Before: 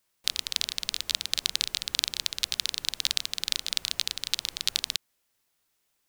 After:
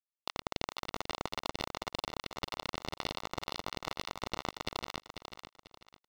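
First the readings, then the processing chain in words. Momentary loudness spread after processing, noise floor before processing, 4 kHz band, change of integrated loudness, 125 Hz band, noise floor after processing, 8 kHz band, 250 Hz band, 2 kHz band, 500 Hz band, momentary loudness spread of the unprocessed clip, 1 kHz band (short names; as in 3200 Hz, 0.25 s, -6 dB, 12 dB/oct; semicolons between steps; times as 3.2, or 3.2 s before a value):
9 LU, -75 dBFS, -14.0 dB, -11.0 dB, +7.5 dB, under -85 dBFS, -17.5 dB, +10.5 dB, -5.5 dB, +12.5 dB, 3 LU, +10.0 dB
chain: companded quantiser 2-bit; polynomial smoothing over 65 samples; on a send: feedback echo 0.492 s, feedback 31%, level -8 dB; on the sum: gain +1.5 dB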